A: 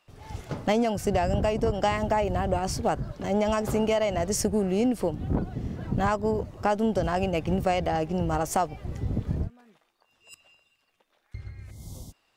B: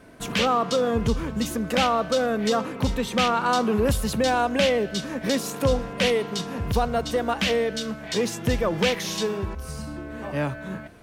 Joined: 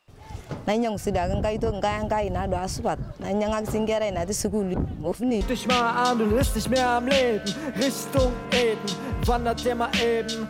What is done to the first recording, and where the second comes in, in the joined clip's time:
A
0:04.74–0:05.41: reverse
0:05.41: continue with B from 0:02.89

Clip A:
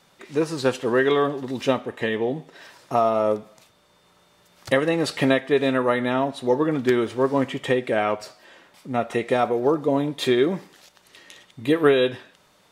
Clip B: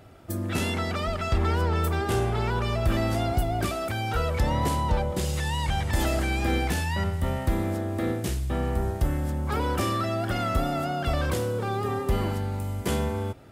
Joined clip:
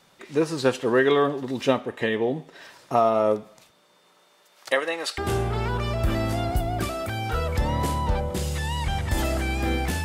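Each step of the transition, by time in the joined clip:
clip A
0:03.70–0:05.18: high-pass filter 150 Hz → 950 Hz
0:05.18: continue with clip B from 0:02.00

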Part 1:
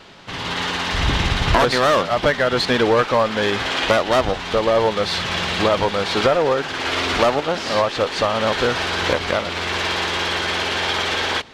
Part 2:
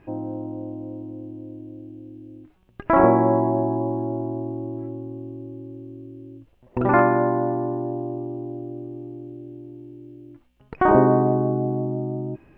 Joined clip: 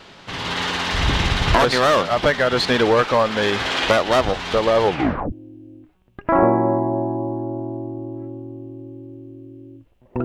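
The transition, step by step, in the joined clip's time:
part 1
0:04.84: tape stop 0.48 s
0:05.32: continue with part 2 from 0:01.93

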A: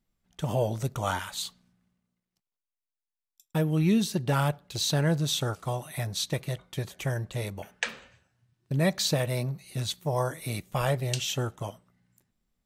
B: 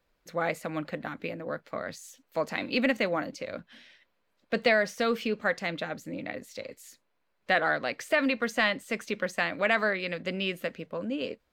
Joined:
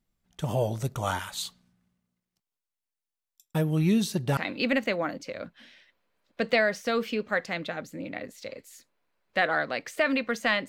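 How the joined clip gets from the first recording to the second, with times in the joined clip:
A
0:04.37: continue with B from 0:02.50

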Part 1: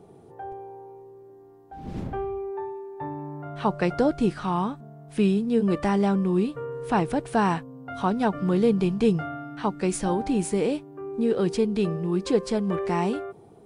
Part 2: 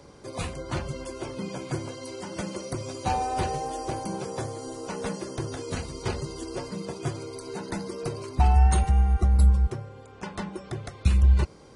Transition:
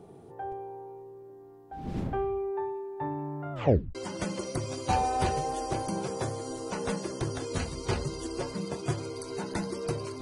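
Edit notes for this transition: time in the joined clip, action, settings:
part 1
0:03.53: tape stop 0.42 s
0:03.95: continue with part 2 from 0:02.12

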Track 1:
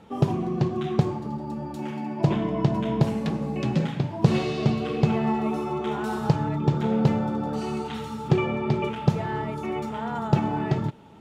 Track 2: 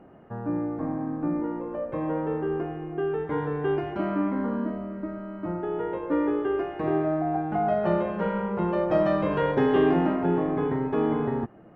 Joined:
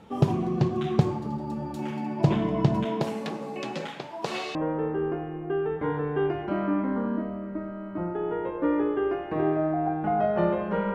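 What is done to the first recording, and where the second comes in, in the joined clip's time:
track 1
0:02.84–0:04.55: high-pass filter 250 Hz → 700 Hz
0:04.55: continue with track 2 from 0:02.03

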